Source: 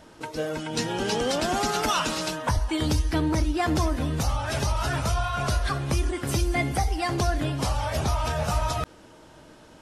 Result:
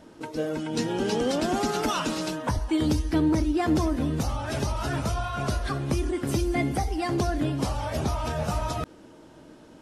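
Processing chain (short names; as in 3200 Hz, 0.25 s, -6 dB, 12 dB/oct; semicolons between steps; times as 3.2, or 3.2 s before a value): bell 280 Hz +8.5 dB 1.8 oct; gain -4.5 dB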